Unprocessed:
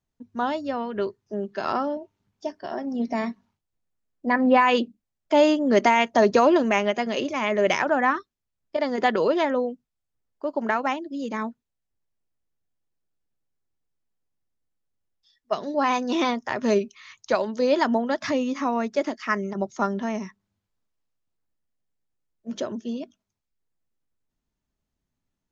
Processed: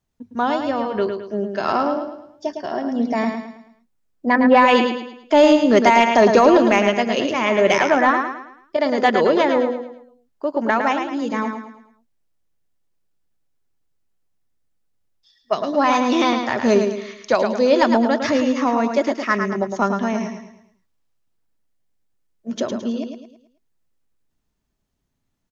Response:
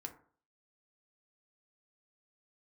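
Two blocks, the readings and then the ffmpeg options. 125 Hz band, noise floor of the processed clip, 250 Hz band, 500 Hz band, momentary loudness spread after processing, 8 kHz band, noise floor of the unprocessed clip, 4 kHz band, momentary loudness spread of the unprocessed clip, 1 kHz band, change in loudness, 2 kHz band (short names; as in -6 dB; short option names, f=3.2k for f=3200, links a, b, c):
+6.0 dB, -72 dBFS, +6.0 dB, +6.0 dB, 16 LU, n/a, -83 dBFS, +6.0 dB, 15 LU, +6.0 dB, +6.0 dB, +5.5 dB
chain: -af "aecho=1:1:108|216|324|432|540:0.473|0.189|0.0757|0.0303|0.0121,acontrast=34"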